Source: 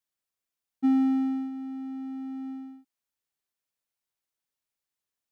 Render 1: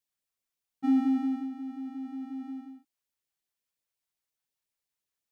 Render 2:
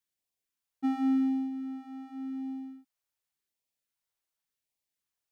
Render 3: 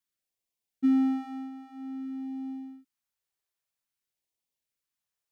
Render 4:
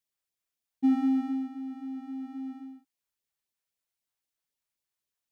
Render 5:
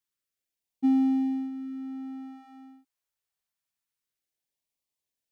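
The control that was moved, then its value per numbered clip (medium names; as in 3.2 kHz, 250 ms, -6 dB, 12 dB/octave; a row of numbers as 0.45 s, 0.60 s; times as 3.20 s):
LFO notch, rate: 5.6 Hz, 0.89 Hz, 0.51 Hz, 3.8 Hz, 0.26 Hz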